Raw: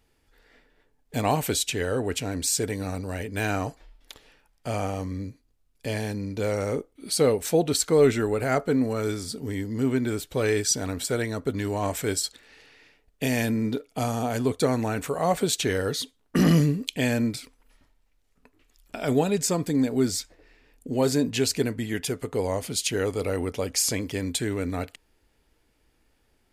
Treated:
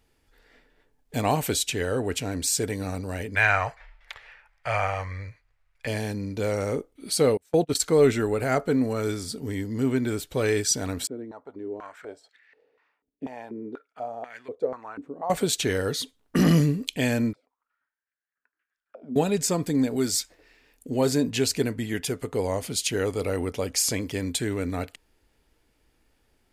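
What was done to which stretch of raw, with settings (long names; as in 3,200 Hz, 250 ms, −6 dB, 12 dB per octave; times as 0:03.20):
0:03.35–0:05.87: drawn EQ curve 110 Hz 0 dB, 260 Hz −21 dB, 580 Hz +2 dB, 2,100 Hz +14 dB, 3,100 Hz +2 dB, 13,000 Hz −12 dB
0:07.37–0:07.80: noise gate −26 dBFS, range −31 dB
0:11.07–0:15.30: band-pass on a step sequencer 4.1 Hz 290–1,900 Hz
0:17.33–0:19.16: envelope filter 230–1,700 Hz, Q 10, down, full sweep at −29.5 dBFS
0:19.96–0:20.90: spectral tilt +1.5 dB per octave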